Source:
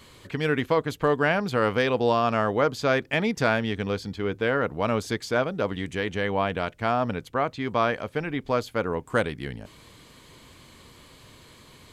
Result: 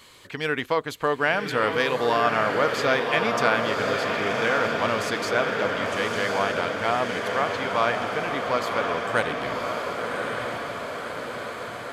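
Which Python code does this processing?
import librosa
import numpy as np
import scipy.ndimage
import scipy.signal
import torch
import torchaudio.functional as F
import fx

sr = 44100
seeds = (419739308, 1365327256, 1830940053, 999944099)

p1 = fx.low_shelf(x, sr, hz=370.0, db=-12.0)
p2 = p1 + fx.echo_diffused(p1, sr, ms=1095, feedback_pct=65, wet_db=-3, dry=0)
y = F.gain(torch.from_numpy(p2), 2.5).numpy()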